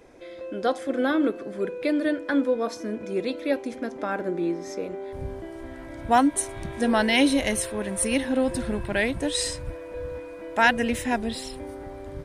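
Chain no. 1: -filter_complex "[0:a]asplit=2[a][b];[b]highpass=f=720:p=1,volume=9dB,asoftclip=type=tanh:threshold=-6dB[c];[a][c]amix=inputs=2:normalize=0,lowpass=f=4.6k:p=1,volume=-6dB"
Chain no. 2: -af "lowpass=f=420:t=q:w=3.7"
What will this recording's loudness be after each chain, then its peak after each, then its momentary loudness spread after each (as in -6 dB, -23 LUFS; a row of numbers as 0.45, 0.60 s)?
-25.0, -22.5 LUFS; -6.5, -6.5 dBFS; 17, 12 LU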